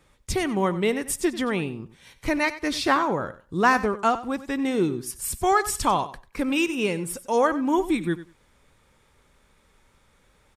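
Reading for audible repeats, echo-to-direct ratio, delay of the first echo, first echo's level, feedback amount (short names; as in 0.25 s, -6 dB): 2, -15.0 dB, 93 ms, -15.0 dB, 16%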